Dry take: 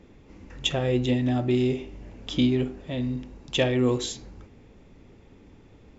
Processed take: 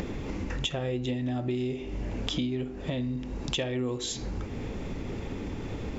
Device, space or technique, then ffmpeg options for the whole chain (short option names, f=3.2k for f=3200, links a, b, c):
upward and downward compression: -af "acompressor=mode=upward:threshold=-24dB:ratio=2.5,acompressor=threshold=-31dB:ratio=6,volume=3dB"